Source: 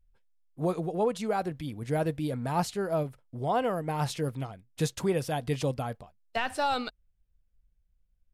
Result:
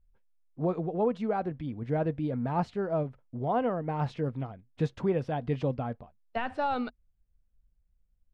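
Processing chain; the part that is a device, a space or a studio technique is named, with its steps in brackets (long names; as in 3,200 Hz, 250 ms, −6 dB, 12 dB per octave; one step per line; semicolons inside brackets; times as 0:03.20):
phone in a pocket (low-pass filter 3,200 Hz 12 dB per octave; parametric band 240 Hz +5 dB 0.21 octaves; high-shelf EQ 2,000 Hz −9 dB)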